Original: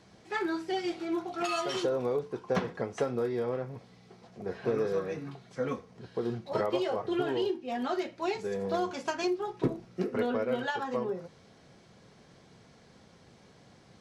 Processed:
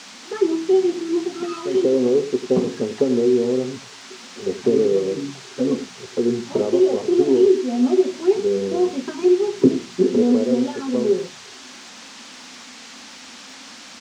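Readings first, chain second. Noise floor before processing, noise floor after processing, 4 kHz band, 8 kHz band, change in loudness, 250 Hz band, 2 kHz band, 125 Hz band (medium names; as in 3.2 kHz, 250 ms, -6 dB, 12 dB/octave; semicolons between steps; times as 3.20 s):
-58 dBFS, -41 dBFS, +8.0 dB, +13.5 dB, +13.0 dB, +15.0 dB, +2.0 dB, +6.0 dB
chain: tilt shelf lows +5 dB, about 1.4 kHz; small resonant body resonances 260/380 Hz, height 15 dB, ringing for 55 ms; on a send: delay 95 ms -12 dB; on the sum: touch-sensitive flanger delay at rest 4.3 ms, full sweep at -16.5 dBFS; bass shelf 60 Hz -10.5 dB; band-stop 670 Hz, Q 19; crackle 430 per s -49 dBFS; band noise 640–6600 Hz -41 dBFS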